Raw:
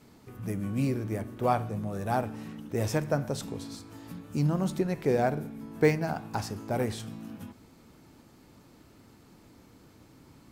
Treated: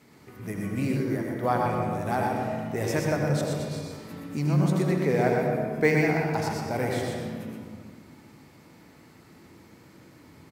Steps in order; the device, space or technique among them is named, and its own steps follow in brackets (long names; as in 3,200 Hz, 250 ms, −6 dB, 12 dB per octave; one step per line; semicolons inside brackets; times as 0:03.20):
PA in a hall (high-pass filter 120 Hz 6 dB per octave; parametric band 2,000 Hz +7 dB 0.45 octaves; single-tap delay 122 ms −4.5 dB; convolution reverb RT60 1.8 s, pre-delay 75 ms, DRR 1 dB)
0:00.96–0:01.66: thirty-one-band graphic EQ 100 Hz −10 dB, 1,600 Hz +4 dB, 2,500 Hz −10 dB, 8,000 Hz −6 dB